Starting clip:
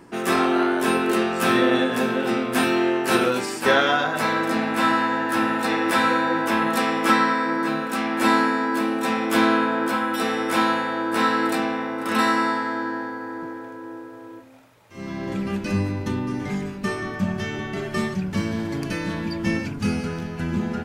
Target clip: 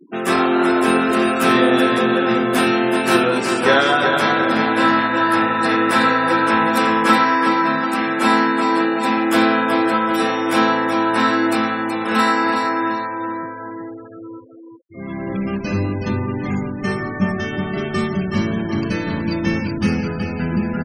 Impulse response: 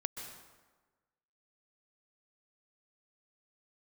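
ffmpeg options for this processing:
-af "aecho=1:1:373|746|1119|1492|1865|2238:0.531|0.271|0.138|0.0704|0.0359|0.0183,afftfilt=real='re*gte(hypot(re,im),0.02)':imag='im*gte(hypot(re,im),0.02)':win_size=1024:overlap=0.75,volume=3.5dB"

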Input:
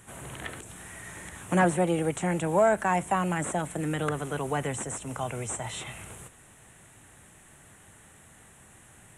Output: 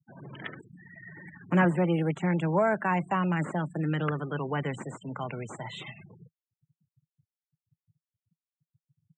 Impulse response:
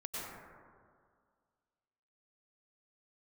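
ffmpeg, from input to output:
-af "afftfilt=real='re*gte(hypot(re,im),0.0158)':imag='im*gte(hypot(re,im),0.0158)':win_size=1024:overlap=0.75,highpass=frequency=130:width=0.5412,highpass=frequency=130:width=1.3066,equalizer=frequency=160:width_type=q:width=4:gain=5,equalizer=frequency=490:width_type=q:width=4:gain=-3,equalizer=frequency=720:width_type=q:width=4:gain=-6,lowpass=frequency=5100:width=0.5412,lowpass=frequency=5100:width=1.3066"

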